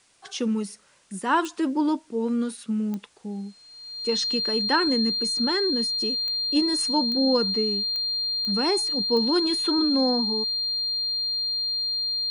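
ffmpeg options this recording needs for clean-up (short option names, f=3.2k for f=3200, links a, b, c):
-af "adeclick=t=4,bandreject=f=4.2k:w=30,agate=range=-21dB:threshold=-39dB"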